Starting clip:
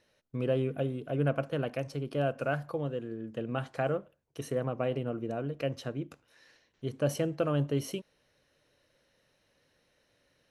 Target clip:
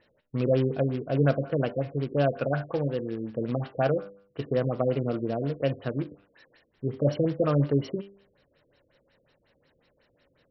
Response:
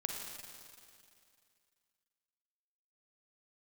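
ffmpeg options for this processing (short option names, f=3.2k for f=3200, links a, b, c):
-af "bandreject=f=99.16:t=h:w=4,bandreject=f=198.32:t=h:w=4,bandreject=f=297.48:t=h:w=4,bandreject=f=396.64:t=h:w=4,bandreject=f=495.8:t=h:w=4,bandreject=f=594.96:t=h:w=4,bandreject=f=694.12:t=h:w=4,bandreject=f=793.28:t=h:w=4,bandreject=f=892.44:t=h:w=4,bandreject=f=991.6:t=h:w=4,bandreject=f=1.09076k:t=h:w=4,bandreject=f=1.18992k:t=h:w=4,bandreject=f=1.28908k:t=h:w=4,bandreject=f=1.38824k:t=h:w=4,bandreject=f=1.4874k:t=h:w=4,bandreject=f=1.58656k:t=h:w=4,bandreject=f=1.68572k:t=h:w=4,bandreject=f=1.78488k:t=h:w=4,bandreject=f=1.88404k:t=h:w=4,bandreject=f=1.9832k:t=h:w=4,bandreject=f=2.08236k:t=h:w=4,bandreject=f=2.18152k:t=h:w=4,bandreject=f=2.28068k:t=h:w=4,bandreject=f=2.37984k:t=h:w=4,bandreject=f=2.479k:t=h:w=4,bandreject=f=2.57816k:t=h:w=4,bandreject=f=2.67732k:t=h:w=4,bandreject=f=2.77648k:t=h:w=4,bandreject=f=2.87564k:t=h:w=4,bandreject=f=2.9748k:t=h:w=4,bandreject=f=3.07396k:t=h:w=4,bandreject=f=3.17312k:t=h:w=4,bandreject=f=3.27228k:t=h:w=4,bandreject=f=3.37144k:t=h:w=4,bandreject=f=3.4706k:t=h:w=4,bandreject=f=3.56976k:t=h:w=4,bandreject=f=3.66892k:t=h:w=4,bandreject=f=3.76808k:t=h:w=4,bandreject=f=3.86724k:t=h:w=4,acrusher=bits=4:mode=log:mix=0:aa=0.000001,afftfilt=real='re*lt(b*sr/1024,540*pow(5800/540,0.5+0.5*sin(2*PI*5.5*pts/sr)))':imag='im*lt(b*sr/1024,540*pow(5800/540,0.5+0.5*sin(2*PI*5.5*pts/sr)))':win_size=1024:overlap=0.75,volume=6dB"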